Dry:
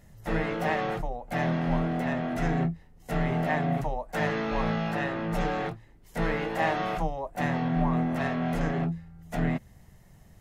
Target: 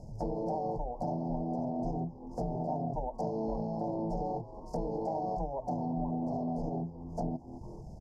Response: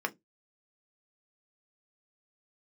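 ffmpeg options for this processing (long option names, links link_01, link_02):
-filter_complex "[0:a]asuperstop=centerf=2100:order=20:qfactor=0.57,asplit=3[link_01][link_02][link_03];[link_02]adelay=282,afreqshift=90,volume=-23dB[link_04];[link_03]adelay=564,afreqshift=180,volume=-31.9dB[link_05];[link_01][link_04][link_05]amix=inputs=3:normalize=0,acompressor=threshold=-46dB:ratio=3,atempo=1.3,lowpass=4000,asplit=2[link_06][link_07];[1:a]atrim=start_sample=2205[link_08];[link_07][link_08]afir=irnorm=-1:irlink=0,volume=-13dB[link_09];[link_06][link_09]amix=inputs=2:normalize=0,volume=8dB"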